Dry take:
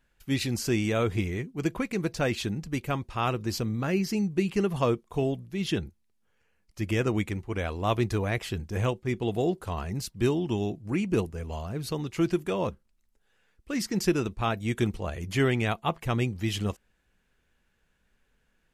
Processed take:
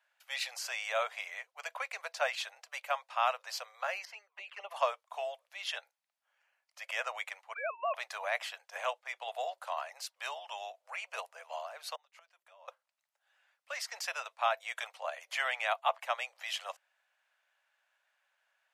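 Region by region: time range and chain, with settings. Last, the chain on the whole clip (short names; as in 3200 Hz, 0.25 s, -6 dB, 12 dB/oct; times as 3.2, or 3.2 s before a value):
4.05–4.71 tone controls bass -5 dB, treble -15 dB + envelope flanger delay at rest 2.3 ms, full sweep at -22.5 dBFS
7.54–7.95 sine-wave speech + compressor 4:1, threshold -29 dBFS
11.95–12.68 notches 60/120/180/240/300/360/420/480 Hz + flipped gate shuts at -25 dBFS, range -25 dB
whole clip: de-esser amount 55%; steep high-pass 580 Hz 72 dB/oct; high shelf 5900 Hz -9 dB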